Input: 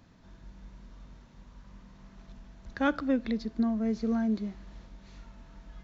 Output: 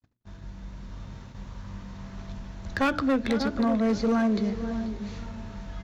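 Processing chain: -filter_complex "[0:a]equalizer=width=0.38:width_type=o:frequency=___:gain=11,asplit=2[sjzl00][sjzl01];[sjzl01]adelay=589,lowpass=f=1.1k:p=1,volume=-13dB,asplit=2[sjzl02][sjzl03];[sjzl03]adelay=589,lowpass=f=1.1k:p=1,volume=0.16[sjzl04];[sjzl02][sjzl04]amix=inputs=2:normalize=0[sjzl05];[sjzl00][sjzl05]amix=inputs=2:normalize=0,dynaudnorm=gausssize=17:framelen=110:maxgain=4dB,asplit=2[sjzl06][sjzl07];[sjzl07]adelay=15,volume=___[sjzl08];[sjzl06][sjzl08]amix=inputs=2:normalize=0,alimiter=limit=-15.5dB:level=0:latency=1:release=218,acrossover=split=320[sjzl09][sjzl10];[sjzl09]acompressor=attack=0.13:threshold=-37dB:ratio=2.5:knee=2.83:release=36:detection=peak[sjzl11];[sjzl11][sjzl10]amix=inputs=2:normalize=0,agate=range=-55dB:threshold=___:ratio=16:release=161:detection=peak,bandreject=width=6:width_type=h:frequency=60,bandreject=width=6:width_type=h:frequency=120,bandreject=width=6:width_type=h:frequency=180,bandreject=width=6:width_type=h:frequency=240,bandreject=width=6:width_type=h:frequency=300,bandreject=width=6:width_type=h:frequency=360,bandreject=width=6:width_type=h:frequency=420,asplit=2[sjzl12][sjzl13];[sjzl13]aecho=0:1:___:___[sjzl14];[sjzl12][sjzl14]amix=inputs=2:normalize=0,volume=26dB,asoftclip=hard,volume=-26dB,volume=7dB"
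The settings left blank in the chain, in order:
99, -13.5dB, -52dB, 487, 0.178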